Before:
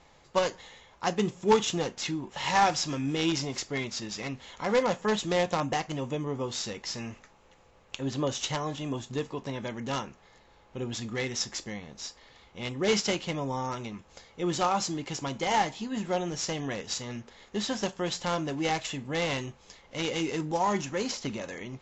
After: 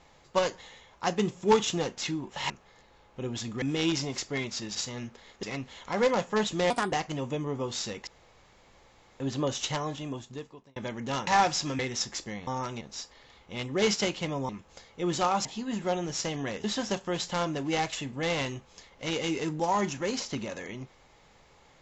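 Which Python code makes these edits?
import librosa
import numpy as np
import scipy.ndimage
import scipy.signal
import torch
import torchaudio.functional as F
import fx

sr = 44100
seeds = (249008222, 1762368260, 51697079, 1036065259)

y = fx.edit(x, sr, fx.swap(start_s=2.5, length_s=0.52, other_s=10.07, other_length_s=1.12),
    fx.speed_span(start_s=5.42, length_s=0.3, speed=1.36),
    fx.room_tone_fill(start_s=6.87, length_s=1.13),
    fx.fade_out_span(start_s=8.62, length_s=0.94),
    fx.move(start_s=13.55, length_s=0.34, to_s=11.87),
    fx.cut(start_s=14.85, length_s=0.84),
    fx.move(start_s=16.88, length_s=0.68, to_s=4.15), tone=tone)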